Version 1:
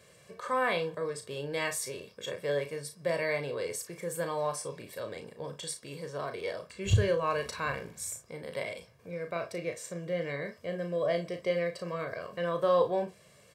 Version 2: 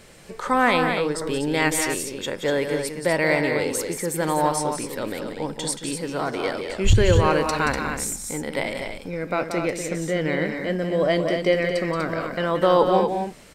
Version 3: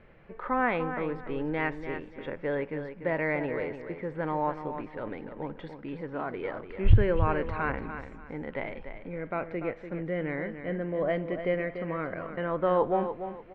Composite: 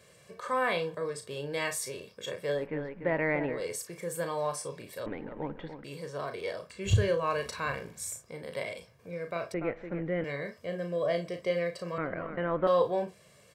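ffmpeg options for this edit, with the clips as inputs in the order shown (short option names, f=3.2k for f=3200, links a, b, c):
-filter_complex "[2:a]asplit=4[a][b][c][d];[0:a]asplit=5[e][f][g][h][i];[e]atrim=end=2.68[j];[a]atrim=start=2.52:end=3.65[k];[f]atrim=start=3.49:end=5.062[l];[b]atrim=start=5.058:end=5.842[m];[g]atrim=start=5.838:end=9.542[n];[c]atrim=start=9.538:end=10.242[o];[h]atrim=start=10.238:end=11.982[p];[d]atrim=start=11.978:end=12.672[q];[i]atrim=start=12.668[r];[j][k]acrossfade=d=0.16:c1=tri:c2=tri[s];[s][l]acrossfade=d=0.16:c1=tri:c2=tri[t];[t][m]acrossfade=d=0.004:c1=hsin:c2=hsin[u];[u][n]acrossfade=d=0.004:c1=hsin:c2=hsin[v];[v][o]acrossfade=d=0.004:c1=hsin:c2=hsin[w];[w][p]acrossfade=d=0.004:c1=hsin:c2=hsin[x];[x][q]acrossfade=d=0.004:c1=hsin:c2=hsin[y];[y][r]acrossfade=d=0.004:c1=hsin:c2=hsin"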